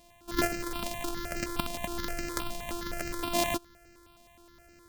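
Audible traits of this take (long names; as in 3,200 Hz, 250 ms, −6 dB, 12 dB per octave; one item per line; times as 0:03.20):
a buzz of ramps at a fixed pitch in blocks of 128 samples
notches that jump at a steady rate 9.6 Hz 390–3,500 Hz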